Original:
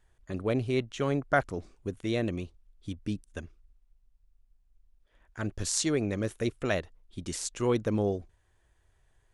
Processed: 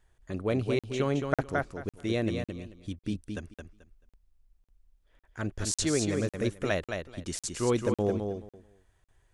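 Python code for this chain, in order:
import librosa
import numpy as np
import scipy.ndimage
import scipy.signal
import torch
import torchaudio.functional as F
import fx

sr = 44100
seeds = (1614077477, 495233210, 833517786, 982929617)

y = fx.echo_feedback(x, sr, ms=218, feedback_pct=19, wet_db=-5.5)
y = fx.buffer_crackle(y, sr, first_s=0.79, period_s=0.55, block=2048, kind='zero')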